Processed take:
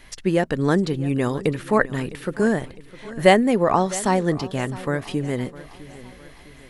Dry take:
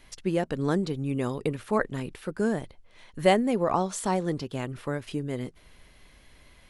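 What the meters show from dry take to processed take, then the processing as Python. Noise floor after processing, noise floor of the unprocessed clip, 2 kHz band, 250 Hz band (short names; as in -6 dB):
-46 dBFS, -56 dBFS, +9.5 dB, +6.5 dB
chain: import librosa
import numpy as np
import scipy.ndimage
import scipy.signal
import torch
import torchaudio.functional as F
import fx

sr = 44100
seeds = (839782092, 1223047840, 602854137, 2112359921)

p1 = fx.peak_eq(x, sr, hz=1800.0, db=5.0, octaves=0.34)
p2 = p1 + fx.echo_feedback(p1, sr, ms=657, feedback_pct=48, wet_db=-18.0, dry=0)
y = F.gain(torch.from_numpy(p2), 6.5).numpy()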